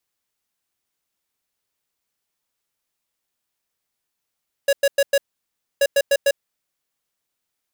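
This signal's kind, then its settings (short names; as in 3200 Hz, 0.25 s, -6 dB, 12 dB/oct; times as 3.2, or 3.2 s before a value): beep pattern square 559 Hz, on 0.05 s, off 0.10 s, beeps 4, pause 0.63 s, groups 2, -15.5 dBFS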